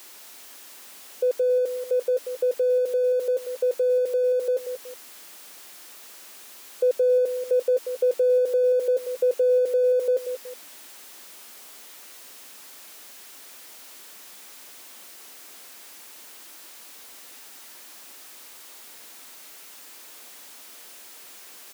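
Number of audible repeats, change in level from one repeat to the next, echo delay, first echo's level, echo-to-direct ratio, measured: 2, −9.5 dB, 185 ms, −9.5 dB, −9.0 dB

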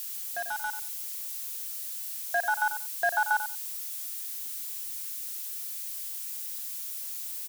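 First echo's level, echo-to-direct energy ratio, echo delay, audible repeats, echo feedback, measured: −10.0 dB, −10.0 dB, 92 ms, 2, 16%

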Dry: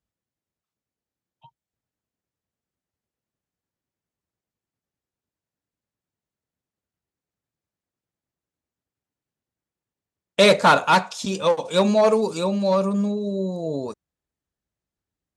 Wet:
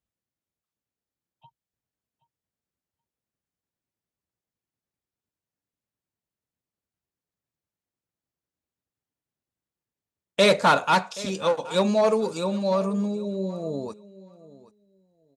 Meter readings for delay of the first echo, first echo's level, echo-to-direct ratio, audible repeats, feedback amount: 776 ms, −19.0 dB, −19.0 dB, 2, 17%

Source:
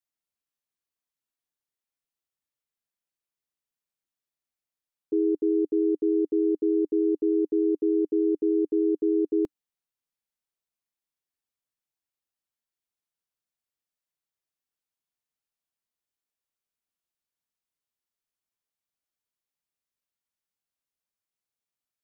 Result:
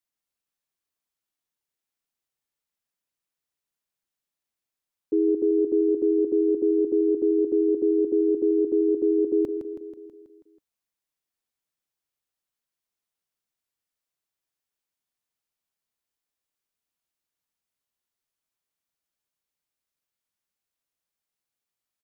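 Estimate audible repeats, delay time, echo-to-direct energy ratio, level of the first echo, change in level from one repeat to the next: 6, 162 ms, −6.5 dB, −8.5 dB, −4.5 dB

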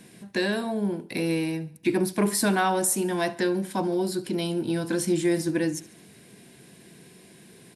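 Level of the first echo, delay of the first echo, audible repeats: −20.0 dB, 72 ms, 3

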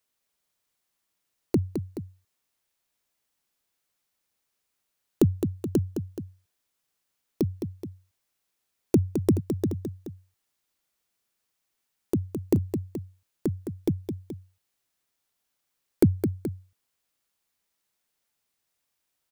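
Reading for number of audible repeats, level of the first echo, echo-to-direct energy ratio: 2, −7.5 dB, −6.5 dB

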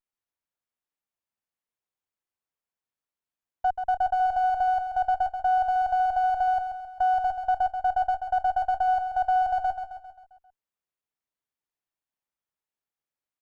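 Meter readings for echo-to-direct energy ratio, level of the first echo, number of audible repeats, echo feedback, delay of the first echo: −6.0 dB, −7.5 dB, 5, 52%, 133 ms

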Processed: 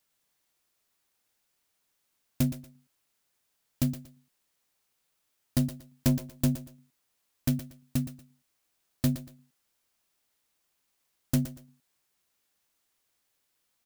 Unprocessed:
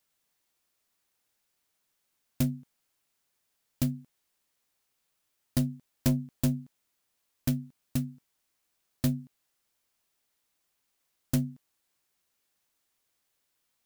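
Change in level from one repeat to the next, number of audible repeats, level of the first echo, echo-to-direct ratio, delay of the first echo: −11.5 dB, 2, −11.5 dB, −11.0 dB, 118 ms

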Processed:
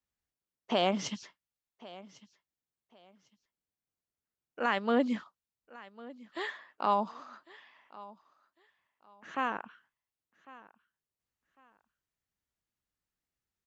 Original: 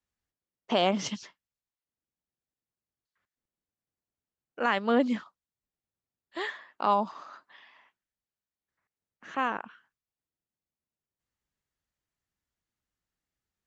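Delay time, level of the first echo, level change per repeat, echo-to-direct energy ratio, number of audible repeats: 1,101 ms, −20.0 dB, −12.5 dB, −20.0 dB, 2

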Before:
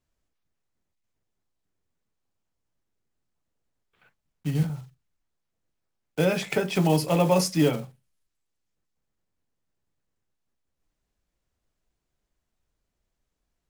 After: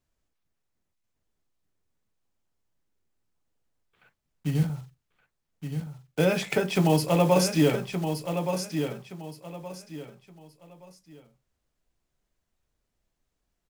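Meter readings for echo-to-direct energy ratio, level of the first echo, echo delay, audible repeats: −7.0 dB, −7.5 dB, 1,171 ms, 3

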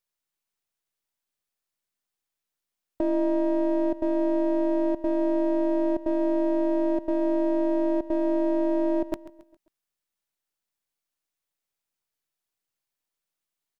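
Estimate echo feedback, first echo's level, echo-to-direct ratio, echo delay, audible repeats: 44%, −17.0 dB, −16.0 dB, 135 ms, 3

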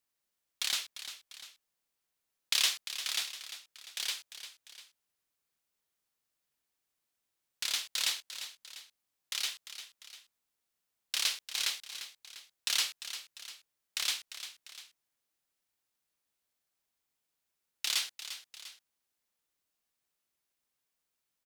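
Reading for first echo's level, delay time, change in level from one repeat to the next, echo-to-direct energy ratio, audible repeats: −11.5 dB, 348 ms, −6.0 dB, −10.5 dB, 2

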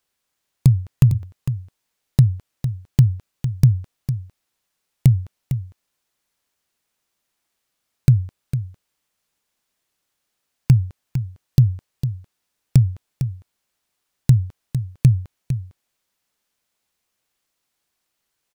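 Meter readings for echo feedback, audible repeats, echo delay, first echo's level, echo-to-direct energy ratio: repeats not evenly spaced, 1, 454 ms, −10.0 dB, −10.0 dB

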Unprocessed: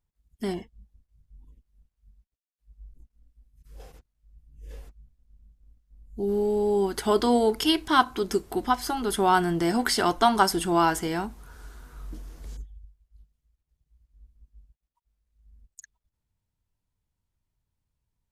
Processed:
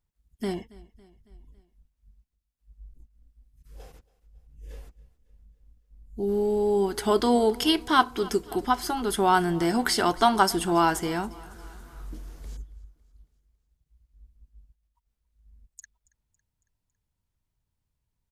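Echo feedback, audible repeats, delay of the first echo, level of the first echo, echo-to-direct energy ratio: 56%, 3, 277 ms, −22.0 dB, −20.5 dB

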